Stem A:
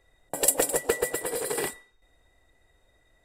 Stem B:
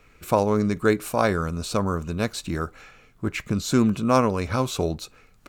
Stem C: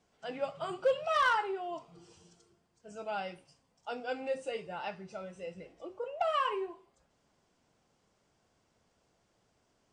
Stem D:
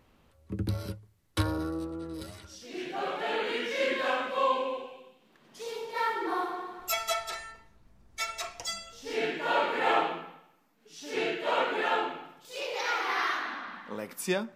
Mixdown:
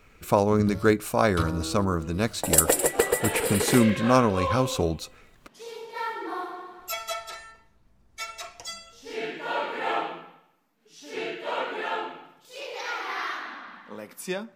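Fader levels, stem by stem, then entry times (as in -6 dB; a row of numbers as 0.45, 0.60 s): +3.0 dB, -0.5 dB, off, -2.0 dB; 2.10 s, 0.00 s, off, 0.00 s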